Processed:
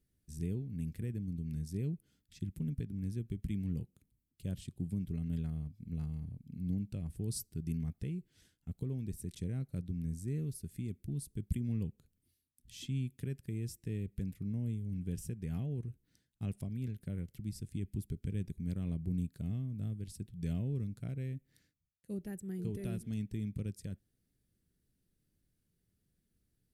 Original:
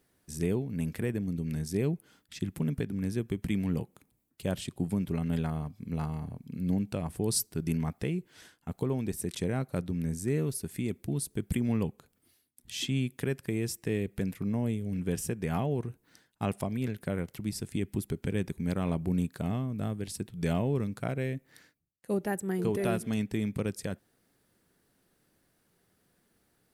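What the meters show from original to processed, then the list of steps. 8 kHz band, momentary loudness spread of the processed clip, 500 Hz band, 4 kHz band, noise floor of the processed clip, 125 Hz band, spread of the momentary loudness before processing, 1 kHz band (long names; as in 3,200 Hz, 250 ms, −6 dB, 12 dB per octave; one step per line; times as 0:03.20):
−12.0 dB, 6 LU, −15.5 dB, −13.5 dB, −81 dBFS, −4.0 dB, 7 LU, below −20 dB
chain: guitar amp tone stack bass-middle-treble 10-0-1
level +8.5 dB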